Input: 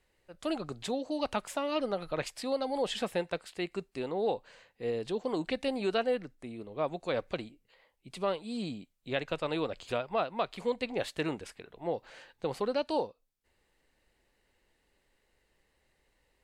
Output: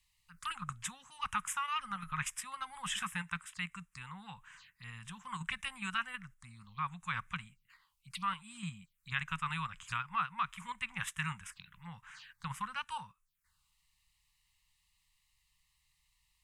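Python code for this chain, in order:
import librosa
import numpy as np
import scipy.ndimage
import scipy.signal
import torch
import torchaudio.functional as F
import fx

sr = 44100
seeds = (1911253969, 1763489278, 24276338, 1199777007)

p1 = fx.env_phaser(x, sr, low_hz=240.0, high_hz=4400.0, full_db=-37.5)
p2 = scipy.signal.sosfilt(scipy.signal.ellip(3, 1.0, 40, [170.0, 1100.0], 'bandstop', fs=sr, output='sos'), p1)
p3 = fx.low_shelf(p2, sr, hz=240.0, db=-7.5)
p4 = fx.level_steps(p3, sr, step_db=24)
p5 = p3 + (p4 * 10.0 ** (-1.5 / 20.0))
y = p5 * 10.0 ** (3.5 / 20.0)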